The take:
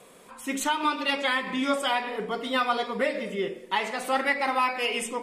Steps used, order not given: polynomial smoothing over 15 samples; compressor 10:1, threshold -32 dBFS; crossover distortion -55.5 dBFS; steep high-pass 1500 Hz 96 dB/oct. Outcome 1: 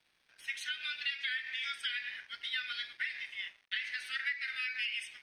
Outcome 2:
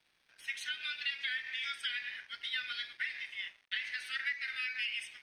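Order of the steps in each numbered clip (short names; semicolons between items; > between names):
steep high-pass > crossover distortion > compressor > polynomial smoothing; steep high-pass > compressor > crossover distortion > polynomial smoothing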